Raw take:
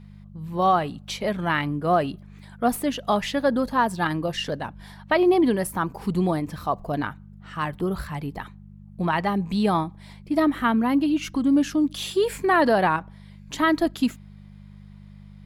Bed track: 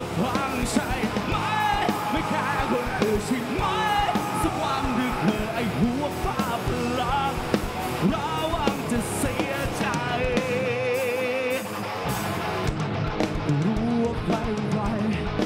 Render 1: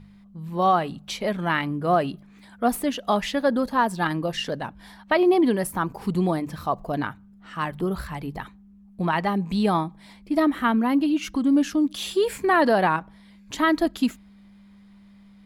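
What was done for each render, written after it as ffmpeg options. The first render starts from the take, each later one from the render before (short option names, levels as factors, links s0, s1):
-af "bandreject=f=50:t=h:w=4,bandreject=f=100:t=h:w=4,bandreject=f=150:t=h:w=4"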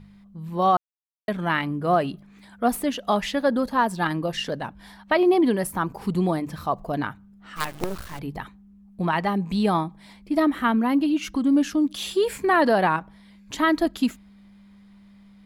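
-filter_complex "[0:a]asettb=1/sr,asplit=3[s0][s1][s2];[s0]atrim=end=7.564[s3];[s1]atrim=start=7.56:end=8.19,asetpts=PTS-STARTPTS,afade=t=in:d=0.004:c=qsin,afade=t=out:st=0.626:d=0.004:c=qsin,acrusher=bits=4:dc=4:mix=0:aa=0.000001[s4];[s2]atrim=start=8.186[s5];[s3][s4]acrossfade=d=0.004:c1=hsin:c2=qsin[s6];[s6][s5]acrossfade=d=0.004:c1=qsin:c2=hsin,asplit=3[s7][s8][s9];[s7]atrim=end=0.77,asetpts=PTS-STARTPTS,afade=t=out:st=0.766:d=0.004:c=hsin[s10];[s8]atrim=start=0.77:end=1.28,asetpts=PTS-STARTPTS,volume=0[s11];[s9]atrim=start=1.28,asetpts=PTS-STARTPTS,afade=t=in:d=0.004:c=hsin[s12];[s10][s11][s12]concat=n=3:v=0:a=1"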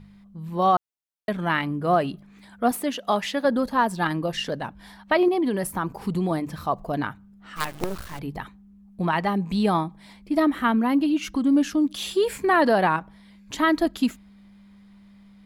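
-filter_complex "[0:a]asettb=1/sr,asplit=3[s0][s1][s2];[s0]atrim=end=2.714[s3];[s1]atrim=start=2.71:end=3.45,asetpts=PTS-STARTPTS,afade=t=in:d=0.004:c=qsin,afade=t=out:st=0.736:d=0.004:c=qsin,highpass=f=220:p=1[s4];[s2]atrim=start=3.446[s5];[s3][s4]acrossfade=d=0.004:c1=hsin:c2=qsin[s6];[s6][s5]acrossfade=d=0.004:c1=qsin:c2=hsin,asettb=1/sr,asplit=3[s7][s8][s9];[s7]atrim=end=5.284[s10];[s8]atrim=start=5.28:end=6.31,asetpts=PTS-STARTPTS,afade=t=in:d=0.004:c=qsin,afade=t=out:st=1.026:d=0.004:c=qsin,acompressor=threshold=0.1:ratio=4:attack=3.2:release=140:knee=1:detection=peak[s11];[s9]atrim=start=6.306[s12];[s10][s11]acrossfade=d=0.004:c1=hsin:c2=qsin[s13];[s13][s12]acrossfade=d=0.004:c1=qsin:c2=hsin"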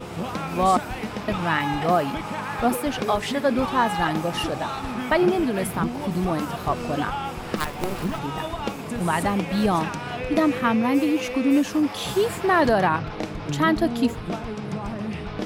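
-filter_complex "[1:a]volume=0.562[s0];[0:a][s0]amix=inputs=2:normalize=0"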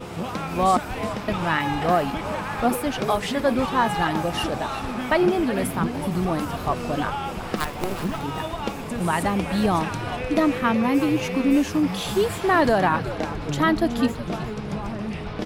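-filter_complex "[0:a]asplit=5[s0][s1][s2][s3][s4];[s1]adelay=372,afreqshift=-97,volume=0.237[s5];[s2]adelay=744,afreqshift=-194,volume=0.102[s6];[s3]adelay=1116,afreqshift=-291,volume=0.0437[s7];[s4]adelay=1488,afreqshift=-388,volume=0.0188[s8];[s0][s5][s6][s7][s8]amix=inputs=5:normalize=0"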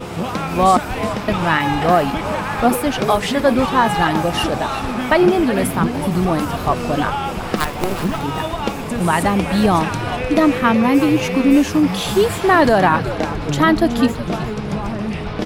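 -af "volume=2.11,alimiter=limit=0.708:level=0:latency=1"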